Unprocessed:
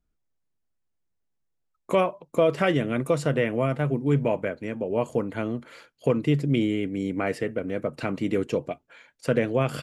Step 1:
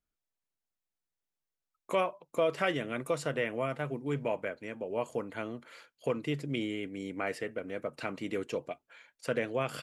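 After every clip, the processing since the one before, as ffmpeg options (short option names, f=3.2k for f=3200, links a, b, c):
-af "lowshelf=f=380:g=-11,volume=-4dB"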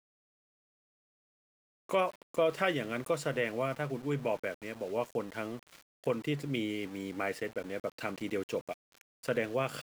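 -af "aeval=exprs='val(0)*gte(abs(val(0)),0.00473)':c=same"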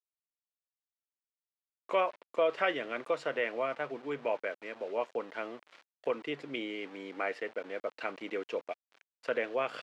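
-af "highpass=410,lowpass=3.4k,volume=1.5dB"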